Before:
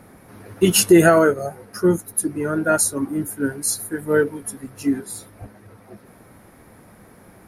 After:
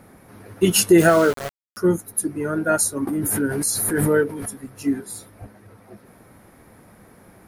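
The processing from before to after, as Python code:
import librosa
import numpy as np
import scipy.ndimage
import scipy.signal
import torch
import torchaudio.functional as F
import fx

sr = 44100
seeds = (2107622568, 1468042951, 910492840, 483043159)

y = fx.sample_gate(x, sr, floor_db=-23.5, at=(0.98, 1.77))
y = fx.pre_swell(y, sr, db_per_s=21.0, at=(3.07, 4.62))
y = y * librosa.db_to_amplitude(-1.5)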